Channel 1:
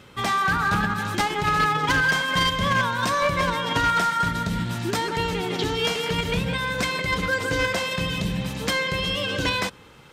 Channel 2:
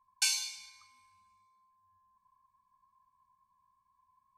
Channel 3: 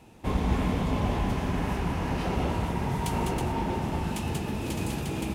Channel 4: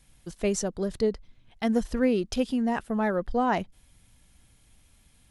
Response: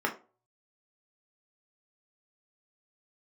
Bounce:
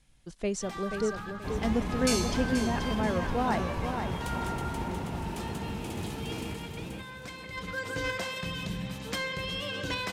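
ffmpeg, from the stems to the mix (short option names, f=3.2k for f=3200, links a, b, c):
-filter_complex "[0:a]adelay=450,volume=-9dB,afade=t=in:st=7.41:d=0.56:silence=0.354813,asplit=2[a][b];[b]volume=-17dB[c];[1:a]adelay=1850,volume=-2dB,asplit=2[d][e];[e]volume=-11dB[f];[2:a]adelay=1200,volume=-7.5dB,asplit=2[g][h];[h]volume=-3.5dB[i];[3:a]lowpass=8.3k,volume=-4.5dB,asplit=2[j][k];[k]volume=-7dB[l];[c][f][i][l]amix=inputs=4:normalize=0,aecho=0:1:481|962|1443|1924:1|0.31|0.0961|0.0298[m];[a][d][g][j][m]amix=inputs=5:normalize=0"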